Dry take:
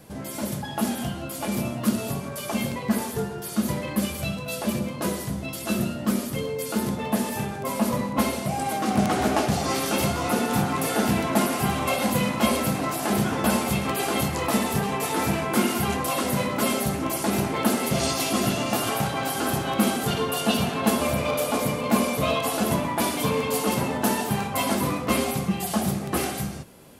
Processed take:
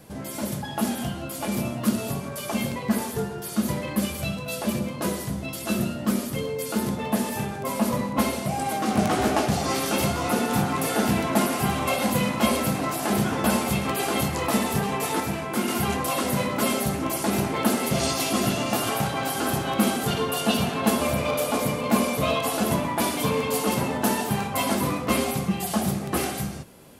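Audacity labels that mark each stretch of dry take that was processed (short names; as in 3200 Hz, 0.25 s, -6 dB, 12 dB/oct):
8.880000	9.320000	doubler 18 ms -7 dB
15.200000	15.680000	gain -4 dB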